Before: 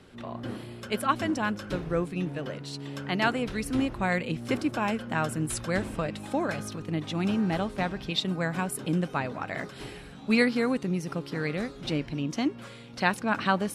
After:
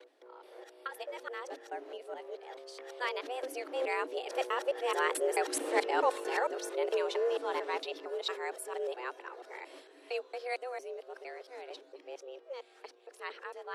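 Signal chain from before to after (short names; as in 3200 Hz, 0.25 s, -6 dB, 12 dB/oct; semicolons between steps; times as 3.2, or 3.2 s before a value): local time reversal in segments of 0.221 s; Doppler pass-by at 5.9, 11 m/s, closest 11 m; frequency shift +250 Hz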